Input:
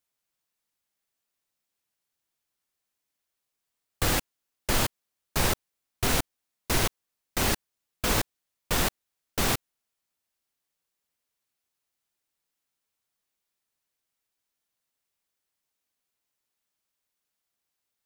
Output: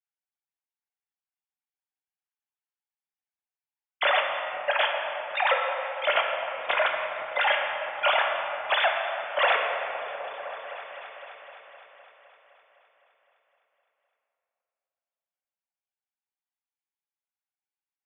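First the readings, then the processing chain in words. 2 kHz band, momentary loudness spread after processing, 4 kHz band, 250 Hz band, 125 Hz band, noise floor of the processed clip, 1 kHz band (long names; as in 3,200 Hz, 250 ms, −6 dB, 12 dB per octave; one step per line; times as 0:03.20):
+8.5 dB, 15 LU, +2.5 dB, below −20 dB, below −30 dB, below −85 dBFS, +8.5 dB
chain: three sine waves on the formant tracks
noise gate with hold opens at −41 dBFS
on a send: echo whose low-pass opens from repeat to repeat 256 ms, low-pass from 200 Hz, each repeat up 1 octave, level −6 dB
on the sum: rectangular room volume 140 cubic metres, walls hard, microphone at 0.37 metres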